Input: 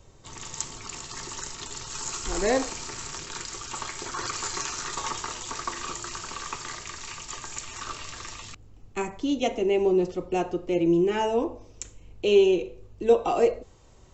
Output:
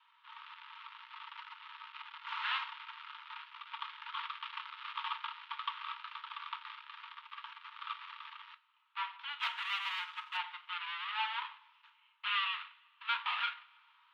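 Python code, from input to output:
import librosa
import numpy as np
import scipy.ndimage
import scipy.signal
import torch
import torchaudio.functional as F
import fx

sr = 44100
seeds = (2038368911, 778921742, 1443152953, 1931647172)

y = fx.dead_time(x, sr, dead_ms=0.22)
y = scipy.signal.sosfilt(scipy.signal.butter(6, 3300.0, 'lowpass', fs=sr, output='sos'), y)
y = fx.leveller(y, sr, passes=1, at=(9.39, 10.37))
y = scipy.signal.sosfilt(scipy.signal.cheby1(6, 6, 900.0, 'highpass', fs=sr, output='sos'), y)
y = fx.rev_double_slope(y, sr, seeds[0], early_s=0.26, late_s=1.9, knee_db=-22, drr_db=9.5)
y = F.gain(torch.from_numpy(y), 1.5).numpy()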